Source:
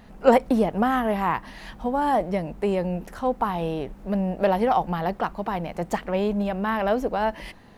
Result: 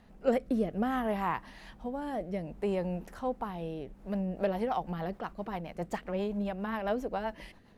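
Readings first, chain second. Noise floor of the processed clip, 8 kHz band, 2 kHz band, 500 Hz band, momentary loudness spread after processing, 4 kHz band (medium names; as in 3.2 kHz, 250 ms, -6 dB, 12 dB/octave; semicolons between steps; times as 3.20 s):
-56 dBFS, no reading, -10.0 dB, -9.5 dB, 9 LU, -10.0 dB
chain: rotary cabinet horn 0.6 Hz, later 7.5 Hz, at 3.84 s; trim -7 dB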